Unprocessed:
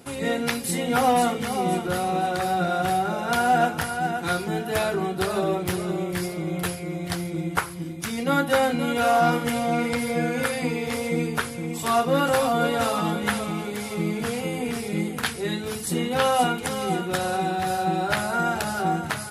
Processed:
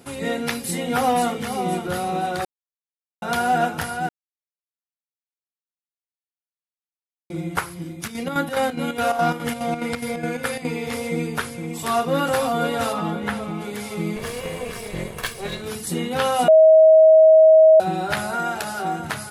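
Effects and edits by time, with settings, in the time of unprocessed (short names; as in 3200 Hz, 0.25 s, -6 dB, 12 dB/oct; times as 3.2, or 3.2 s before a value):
2.45–3.22 mute
4.09–7.3 mute
7.94–10.76 chopper 4.8 Hz, depth 60%, duty 65%
12.92–13.6 high shelf 4300 Hz -> 2600 Hz -10.5 dB
14.16–15.62 minimum comb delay 1.8 ms
16.48–17.8 bleep 635 Hz -7.5 dBFS
18.35–19 low shelf 190 Hz -10.5 dB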